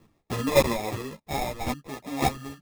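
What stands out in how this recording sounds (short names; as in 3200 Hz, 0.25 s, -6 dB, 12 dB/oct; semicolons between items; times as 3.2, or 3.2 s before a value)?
chopped level 1.8 Hz, depth 65%, duty 10%; aliases and images of a low sample rate 1500 Hz, jitter 0%; a shimmering, thickened sound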